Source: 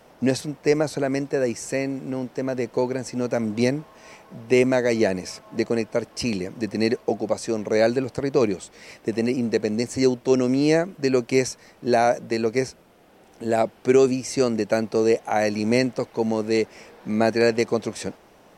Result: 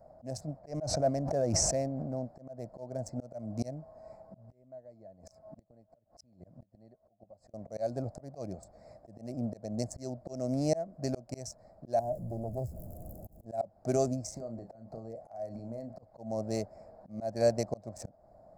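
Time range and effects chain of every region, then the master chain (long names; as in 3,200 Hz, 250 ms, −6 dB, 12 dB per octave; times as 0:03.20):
0:00.59–0:02.10: high-frequency loss of the air 97 metres + level that may fall only so fast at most 20 dB per second
0:04.42–0:07.54: gate with flip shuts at −16 dBFS, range −25 dB + dynamic equaliser 750 Hz, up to −4 dB, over −45 dBFS, Q 0.78
0:11.99–0:13.46: converter with a step at zero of −26.5 dBFS + drawn EQ curve 110 Hz 0 dB, 250 Hz −6 dB, 360 Hz −6 dB, 1,100 Hz −24 dB, 2,600 Hz −26 dB, 4,600 Hz −21 dB, 12,000 Hz +6 dB + highs frequency-modulated by the lows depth 0.43 ms
0:14.28–0:16.03: downward compressor 8 to 1, threshold −29 dBFS + double-tracking delay 35 ms −8 dB
whole clip: adaptive Wiener filter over 15 samples; drawn EQ curve 100 Hz 0 dB, 440 Hz −17 dB, 640 Hz +5 dB, 920 Hz −13 dB, 3,300 Hz −24 dB, 5,100 Hz −4 dB; volume swells 266 ms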